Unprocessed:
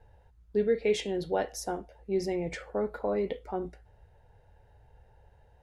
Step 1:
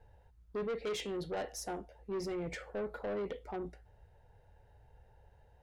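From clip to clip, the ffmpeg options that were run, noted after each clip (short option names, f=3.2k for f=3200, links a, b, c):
-af "asoftclip=type=tanh:threshold=-30dB,volume=-3dB"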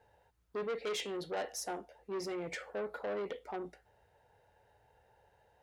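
-af "highpass=f=430:p=1,volume=2.5dB"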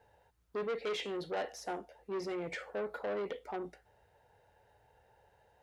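-filter_complex "[0:a]acrossover=split=4500[a][b];[b]acompressor=threshold=-56dB:ratio=4:attack=1:release=60[c];[a][c]amix=inputs=2:normalize=0,volume=1dB"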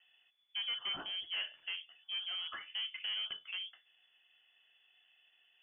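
-af "lowpass=f=3k:t=q:w=0.5098,lowpass=f=3k:t=q:w=0.6013,lowpass=f=3k:t=q:w=0.9,lowpass=f=3k:t=q:w=2.563,afreqshift=-3500,volume=-2.5dB"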